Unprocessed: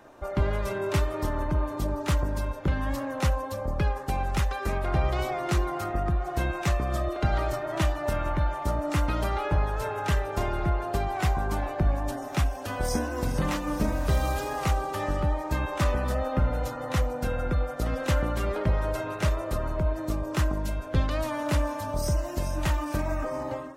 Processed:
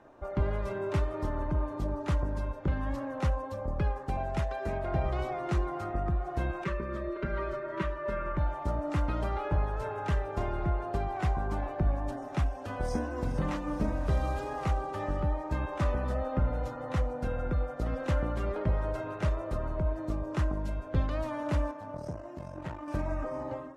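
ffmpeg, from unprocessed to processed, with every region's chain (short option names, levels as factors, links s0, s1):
-filter_complex "[0:a]asettb=1/sr,asplit=3[s0][s1][s2];[s0]atrim=end=4.174[s3];[s1]atrim=start=4.17:end=5.06,asetpts=PTS-STARTPTS,afade=t=in:d=0.004:c=qsin,afade=t=out:st=0.886:d=0.004:c=qsin,highpass=57,bandreject=f=1200:w=12,aeval=exprs='val(0)+0.0251*sin(2*PI*660*n/s)':c=same[s4];[s2]atrim=start=5.056[s5];[s3][s4]acrossfade=d=0.004:c1=hsin:c2=qsin[s6];[s6][s5]acrossfade=d=0.004:c1=qsin:c2=hsin,asettb=1/sr,asplit=3[s7][s8][s9];[s7]atrim=end=6.644[s10];[s8]atrim=start=6.64:end=8.37,asetpts=PTS-STARTPTS,afade=t=in:d=0.004:c=qsin,afade=t=out:st=1.726:d=0.004:c=qsin,asuperstop=centerf=740:order=4:qfactor=2,bass=f=250:g=-7,treble=f=4000:g=-13,aecho=1:1:5.2:0.93,atrim=end_sample=76293[s11];[s9]atrim=start=8.366[s12];[s10][s11]acrossfade=d=0.004:c1=hsin:c2=qsin[s13];[s13][s12]acrossfade=d=0.004:c1=qsin:c2=hsin,asettb=1/sr,asplit=3[s14][s15][s16];[s14]atrim=end=21.714[s17];[s15]atrim=start=21.71:end=22.88,asetpts=PTS-STARTPTS,afade=t=in:d=0.004:c=qsin,afade=t=out:st=1.166:d=0.004:c=qsin,highshelf=f=2800:g=-8.5,aeval=exprs='(tanh(12.6*val(0)+0.75)-tanh(0.75))/12.6':c=same,highpass=120[s18];[s16]atrim=start=22.876[s19];[s17][s18]acrossfade=d=0.004:c1=hsin:c2=qsin[s20];[s20][s19]acrossfade=d=0.004:c1=qsin:c2=hsin,lowpass=10000,highshelf=f=2500:g=-11,volume=0.668"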